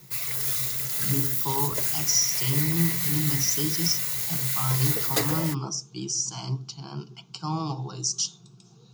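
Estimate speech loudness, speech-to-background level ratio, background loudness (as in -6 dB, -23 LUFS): -28.5 LUFS, -4.0 dB, -24.5 LUFS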